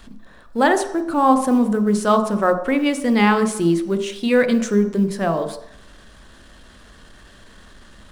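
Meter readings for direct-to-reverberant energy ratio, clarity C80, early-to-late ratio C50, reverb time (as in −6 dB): 8.0 dB, 12.5 dB, 10.5 dB, 0.75 s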